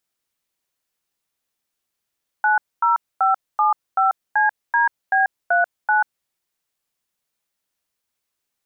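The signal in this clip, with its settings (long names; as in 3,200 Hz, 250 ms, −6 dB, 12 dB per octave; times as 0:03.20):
touch tones "90575CDB39", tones 139 ms, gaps 244 ms, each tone −16.5 dBFS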